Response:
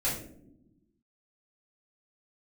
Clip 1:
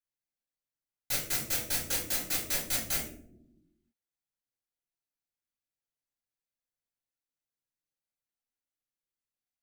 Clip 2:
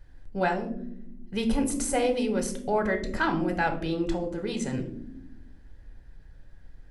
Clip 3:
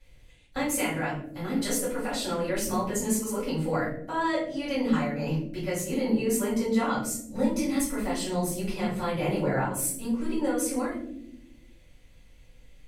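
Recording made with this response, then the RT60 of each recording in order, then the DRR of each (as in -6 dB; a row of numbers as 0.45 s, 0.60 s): 3; no single decay rate, no single decay rate, no single decay rate; -3.5 dB, 4.0 dB, -9.5 dB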